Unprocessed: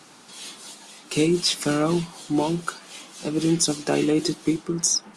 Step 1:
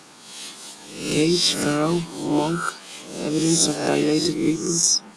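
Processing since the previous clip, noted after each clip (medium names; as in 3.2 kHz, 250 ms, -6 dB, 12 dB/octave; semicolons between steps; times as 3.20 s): reverse spectral sustain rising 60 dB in 0.72 s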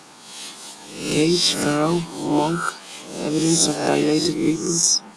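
peaking EQ 850 Hz +3.5 dB 0.66 oct; trim +1 dB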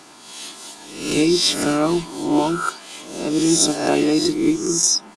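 comb 3 ms, depth 37%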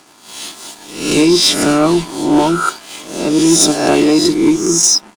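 waveshaping leveller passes 2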